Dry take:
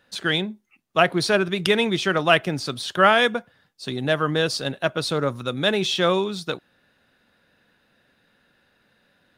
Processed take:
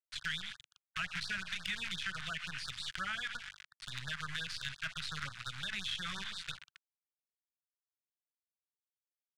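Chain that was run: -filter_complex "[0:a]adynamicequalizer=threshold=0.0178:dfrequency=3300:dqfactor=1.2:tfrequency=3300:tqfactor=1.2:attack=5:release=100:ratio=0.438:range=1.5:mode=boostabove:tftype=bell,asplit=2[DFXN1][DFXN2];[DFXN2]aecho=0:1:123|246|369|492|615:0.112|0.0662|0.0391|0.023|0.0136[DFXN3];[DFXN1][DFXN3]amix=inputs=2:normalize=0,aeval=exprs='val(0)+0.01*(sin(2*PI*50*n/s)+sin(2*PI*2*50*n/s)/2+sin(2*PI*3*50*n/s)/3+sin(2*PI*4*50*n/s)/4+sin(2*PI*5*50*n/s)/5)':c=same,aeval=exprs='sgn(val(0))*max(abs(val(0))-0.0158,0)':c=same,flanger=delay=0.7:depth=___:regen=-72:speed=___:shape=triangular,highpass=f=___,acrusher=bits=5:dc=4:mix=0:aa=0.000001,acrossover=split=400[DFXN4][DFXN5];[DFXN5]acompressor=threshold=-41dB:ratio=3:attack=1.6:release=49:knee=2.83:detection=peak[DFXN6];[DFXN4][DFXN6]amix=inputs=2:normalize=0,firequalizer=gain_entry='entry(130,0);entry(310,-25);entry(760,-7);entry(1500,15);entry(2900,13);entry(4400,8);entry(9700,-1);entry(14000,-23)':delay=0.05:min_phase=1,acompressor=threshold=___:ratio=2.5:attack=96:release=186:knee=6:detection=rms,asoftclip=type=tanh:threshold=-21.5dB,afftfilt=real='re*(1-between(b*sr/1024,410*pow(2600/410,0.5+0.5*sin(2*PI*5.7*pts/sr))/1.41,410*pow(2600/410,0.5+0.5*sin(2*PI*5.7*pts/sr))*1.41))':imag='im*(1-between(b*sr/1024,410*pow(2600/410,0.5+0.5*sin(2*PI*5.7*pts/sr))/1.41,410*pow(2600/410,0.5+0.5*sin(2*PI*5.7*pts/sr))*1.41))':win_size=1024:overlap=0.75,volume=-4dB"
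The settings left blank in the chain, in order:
8.1, 0.72, 160, -34dB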